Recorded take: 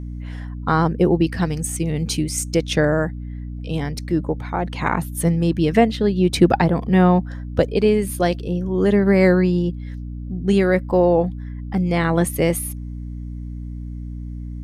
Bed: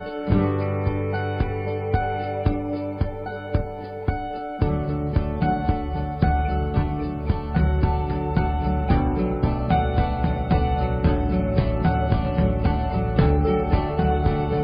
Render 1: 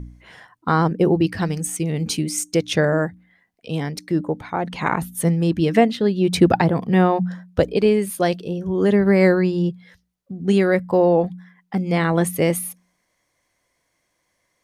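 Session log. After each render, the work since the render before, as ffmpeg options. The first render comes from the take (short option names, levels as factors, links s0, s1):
-af "bandreject=f=60:t=h:w=4,bandreject=f=120:t=h:w=4,bandreject=f=180:t=h:w=4,bandreject=f=240:t=h:w=4,bandreject=f=300:t=h:w=4"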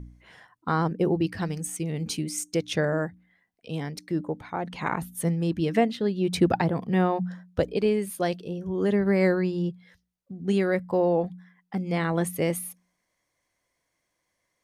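-af "volume=0.447"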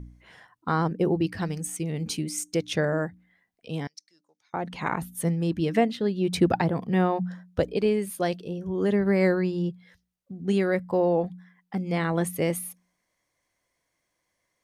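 -filter_complex "[0:a]asettb=1/sr,asplit=3[s0][s1][s2];[s0]atrim=end=3.874[s3];[s1]atrim=start=3.87:end=4.54,asetpts=PTS-STARTPTS,afade=t=in:d=0.004:c=qsin,afade=t=out:st=0.666:d=0.004:c=qsin,bandpass=f=5700:t=q:w=4.7[s4];[s2]atrim=start=4.536[s5];[s3][s4]acrossfade=d=0.004:c1=hsin:c2=qsin[s6];[s6][s5]acrossfade=d=0.004:c1=qsin:c2=hsin"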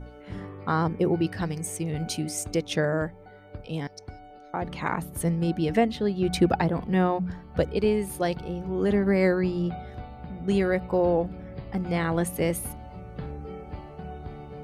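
-filter_complex "[1:a]volume=0.126[s0];[0:a][s0]amix=inputs=2:normalize=0"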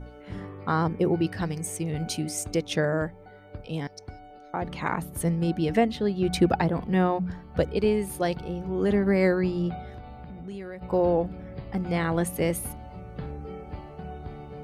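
-filter_complex "[0:a]asplit=3[s0][s1][s2];[s0]afade=t=out:st=9.95:d=0.02[s3];[s1]acompressor=threshold=0.0141:ratio=4:attack=3.2:release=140:knee=1:detection=peak,afade=t=in:st=9.95:d=0.02,afade=t=out:st=10.81:d=0.02[s4];[s2]afade=t=in:st=10.81:d=0.02[s5];[s3][s4][s5]amix=inputs=3:normalize=0"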